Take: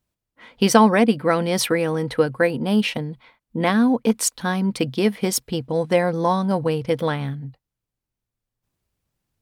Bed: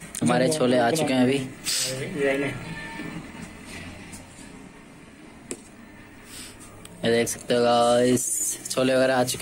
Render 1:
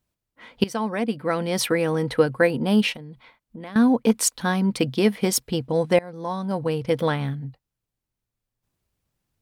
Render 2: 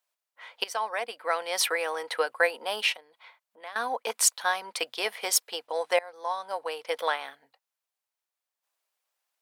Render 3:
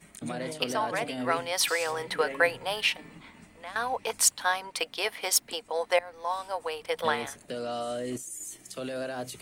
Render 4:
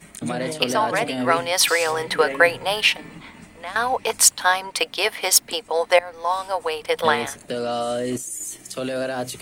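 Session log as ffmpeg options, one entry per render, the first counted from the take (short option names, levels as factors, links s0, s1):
-filter_complex "[0:a]asettb=1/sr,asplit=3[s0][s1][s2];[s0]atrim=end=2.924[s3];[s1]atrim=start=2.92:end=3.76,asetpts=PTS-STARTPTS,afade=t=in:d=0.004:c=qsin,afade=t=out:st=0.836:d=0.004:c=qsin,acompressor=threshold=0.0141:ratio=4:attack=3.2:release=140:knee=1:detection=peak[s4];[s2]atrim=start=3.756[s5];[s3][s4]acrossfade=d=0.004:c1=hsin:c2=qsin[s6];[s6][s5]acrossfade=d=0.004:c1=qsin:c2=hsin,asplit=3[s7][s8][s9];[s7]atrim=end=0.64,asetpts=PTS-STARTPTS,afade=t=out:st=0.636:d=0.004:c=hsin:silence=0.112202[s10];[s8]atrim=start=0.64:end=5.99,asetpts=PTS-STARTPTS,afade=t=in:d=1.34:silence=0.112202,afade=t=out:st=5.346:d=0.004:c=hsin:silence=0.0749894[s11];[s9]atrim=start=5.99,asetpts=PTS-STARTPTS,afade=t=in:d=1.02:silence=0.0749894[s12];[s10][s11][s12]concat=n=3:v=0:a=1"
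-af "highpass=f=620:w=0.5412,highpass=f=620:w=1.3066"
-filter_complex "[1:a]volume=0.2[s0];[0:a][s0]amix=inputs=2:normalize=0"
-af "volume=2.66,alimiter=limit=0.891:level=0:latency=1"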